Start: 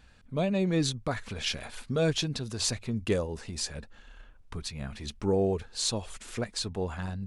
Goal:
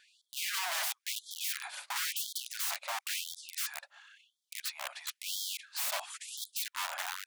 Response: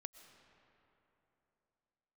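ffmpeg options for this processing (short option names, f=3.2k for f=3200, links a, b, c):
-af "aeval=exprs='(mod(33.5*val(0)+1,2)-1)/33.5':c=same,afftfilt=real='re*gte(b*sr/1024,530*pow(3200/530,0.5+0.5*sin(2*PI*0.97*pts/sr)))':imag='im*gte(b*sr/1024,530*pow(3200/530,0.5+0.5*sin(2*PI*0.97*pts/sr)))':win_size=1024:overlap=0.75,volume=2dB"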